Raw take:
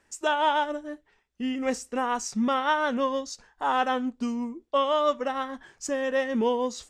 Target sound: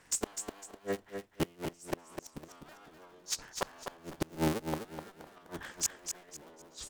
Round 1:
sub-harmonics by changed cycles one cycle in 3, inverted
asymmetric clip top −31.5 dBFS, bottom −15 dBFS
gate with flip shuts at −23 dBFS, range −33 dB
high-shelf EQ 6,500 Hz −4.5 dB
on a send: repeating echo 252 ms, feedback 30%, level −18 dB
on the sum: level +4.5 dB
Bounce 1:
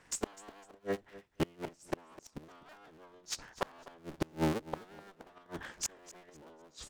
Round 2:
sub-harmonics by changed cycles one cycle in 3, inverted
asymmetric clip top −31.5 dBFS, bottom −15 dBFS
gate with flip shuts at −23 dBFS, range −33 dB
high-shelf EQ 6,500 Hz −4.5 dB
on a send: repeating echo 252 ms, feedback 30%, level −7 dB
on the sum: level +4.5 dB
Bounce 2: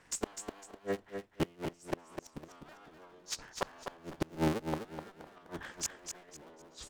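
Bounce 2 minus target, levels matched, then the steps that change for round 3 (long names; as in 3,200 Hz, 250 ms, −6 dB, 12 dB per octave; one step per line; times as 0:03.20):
8,000 Hz band −3.5 dB
change: high-shelf EQ 6,500 Hz +5 dB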